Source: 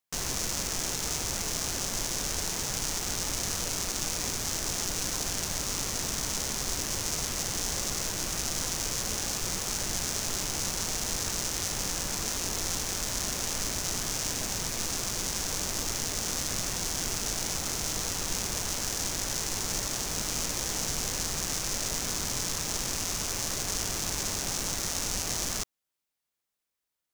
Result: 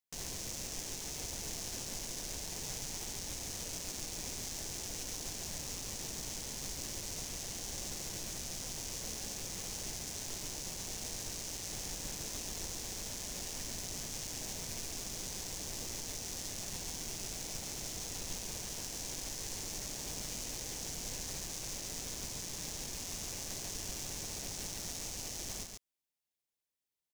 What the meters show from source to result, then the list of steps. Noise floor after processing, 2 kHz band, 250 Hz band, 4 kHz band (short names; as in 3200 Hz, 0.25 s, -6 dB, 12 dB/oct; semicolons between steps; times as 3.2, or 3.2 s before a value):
under -85 dBFS, -12.0 dB, -9.5 dB, -10.0 dB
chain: bell 1300 Hz -8 dB 0.74 oct; limiter -20 dBFS, peak gain reduction 7 dB; echo 0.14 s -5 dB; gain -7 dB